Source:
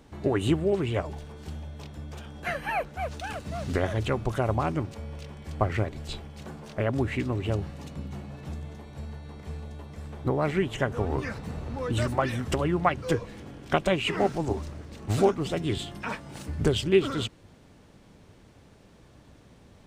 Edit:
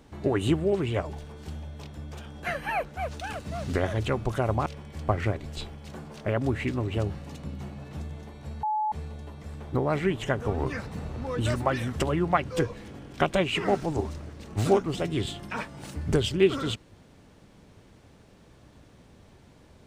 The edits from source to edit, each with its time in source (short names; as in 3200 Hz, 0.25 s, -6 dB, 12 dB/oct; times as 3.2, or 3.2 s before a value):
4.66–5.18 cut
9.15–9.44 bleep 857 Hz -24 dBFS